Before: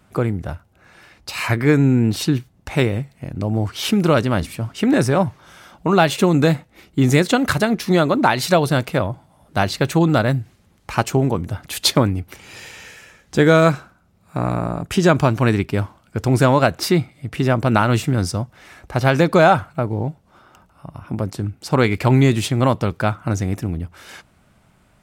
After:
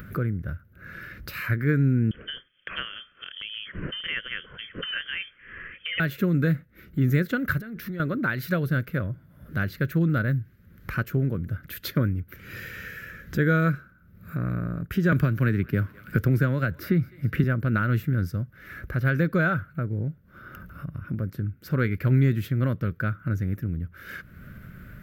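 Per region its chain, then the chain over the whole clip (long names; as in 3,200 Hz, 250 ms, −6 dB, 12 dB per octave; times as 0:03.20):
0:02.11–0:06.00: low-shelf EQ 190 Hz −11.5 dB + voice inversion scrambler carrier 3,300 Hz
0:07.59–0:08.00: downward compressor 5 to 1, threshold −28 dBFS + transient designer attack −2 dB, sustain +6 dB
0:15.12–0:17.44: feedback echo with a high-pass in the loop 205 ms, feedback 38%, high-pass 980 Hz, level −23.5 dB + multiband upward and downward compressor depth 100%
whole clip: drawn EQ curve 170 Hz 0 dB, 300 Hz −6 dB, 550 Hz −8 dB, 830 Hz −27 dB, 1,500 Hz +2 dB, 2,700 Hz −11 dB, 4,000 Hz −12 dB, 9,400 Hz −15 dB, 13,000 Hz +11 dB; upward compression, threshold −21 dBFS; high-shelf EQ 5,800 Hz −10 dB; level −4.5 dB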